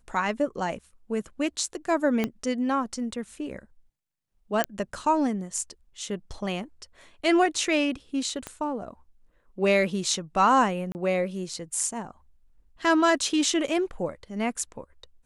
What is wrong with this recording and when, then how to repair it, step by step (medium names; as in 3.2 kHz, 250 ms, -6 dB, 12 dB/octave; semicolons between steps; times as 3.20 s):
2.24 s: pop -13 dBFS
4.64 s: pop -9 dBFS
8.47 s: pop -19 dBFS
10.92–10.95 s: dropout 29 ms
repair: de-click; interpolate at 10.92 s, 29 ms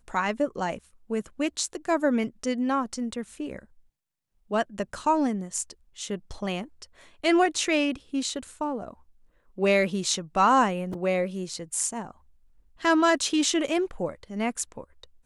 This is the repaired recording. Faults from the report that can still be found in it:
2.24 s: pop
8.47 s: pop